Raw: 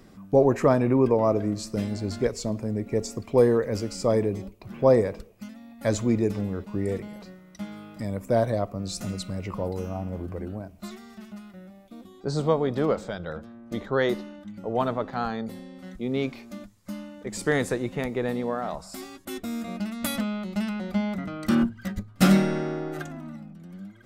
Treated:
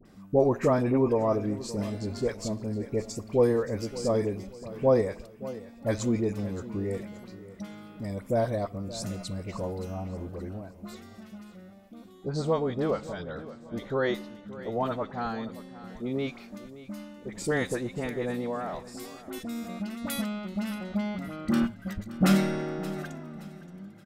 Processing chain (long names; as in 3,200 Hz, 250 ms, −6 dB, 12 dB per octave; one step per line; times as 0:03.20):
all-pass dispersion highs, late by 55 ms, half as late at 1,200 Hz
on a send: repeating echo 573 ms, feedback 34%, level −16 dB
on the sum: level −3.5 dB